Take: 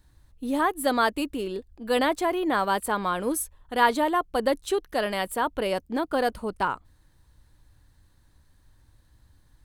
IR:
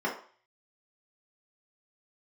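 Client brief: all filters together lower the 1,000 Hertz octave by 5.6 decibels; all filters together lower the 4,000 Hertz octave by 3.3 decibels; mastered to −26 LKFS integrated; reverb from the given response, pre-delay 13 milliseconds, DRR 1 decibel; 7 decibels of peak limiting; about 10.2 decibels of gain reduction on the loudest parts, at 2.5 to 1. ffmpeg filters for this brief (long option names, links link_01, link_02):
-filter_complex "[0:a]equalizer=frequency=1000:width_type=o:gain=-7,equalizer=frequency=4000:width_type=o:gain=-4,acompressor=threshold=-36dB:ratio=2.5,alimiter=level_in=3.5dB:limit=-24dB:level=0:latency=1,volume=-3.5dB,asplit=2[link_01][link_02];[1:a]atrim=start_sample=2205,adelay=13[link_03];[link_02][link_03]afir=irnorm=-1:irlink=0,volume=-10.5dB[link_04];[link_01][link_04]amix=inputs=2:normalize=0,volume=9dB"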